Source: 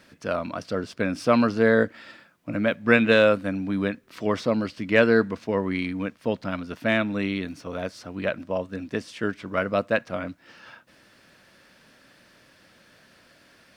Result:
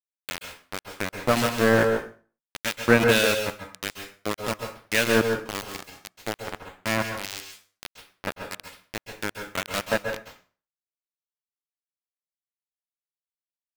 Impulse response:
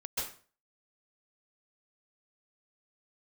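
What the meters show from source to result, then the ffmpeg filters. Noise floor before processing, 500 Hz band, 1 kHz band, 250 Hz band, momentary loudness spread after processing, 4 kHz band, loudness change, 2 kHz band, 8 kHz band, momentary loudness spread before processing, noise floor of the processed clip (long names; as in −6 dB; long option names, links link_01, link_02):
−57 dBFS, −3.0 dB, 0.0 dB, −5.0 dB, 18 LU, +5.0 dB, −1.0 dB, −0.5 dB, can't be measured, 14 LU, below −85 dBFS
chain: -filter_complex "[0:a]aeval=exprs='val(0)*gte(abs(val(0)),0.133)':channel_layout=same,acrossover=split=1900[link_01][link_02];[link_01]aeval=exprs='val(0)*(1-0.7/2+0.7/2*cos(2*PI*1.7*n/s))':channel_layout=same[link_03];[link_02]aeval=exprs='val(0)*(1-0.7/2-0.7/2*cos(2*PI*1.7*n/s))':channel_layout=same[link_04];[link_03][link_04]amix=inputs=2:normalize=0,asplit=2[link_05][link_06];[1:a]atrim=start_sample=2205[link_07];[link_06][link_07]afir=irnorm=-1:irlink=0,volume=-6dB[link_08];[link_05][link_08]amix=inputs=2:normalize=0"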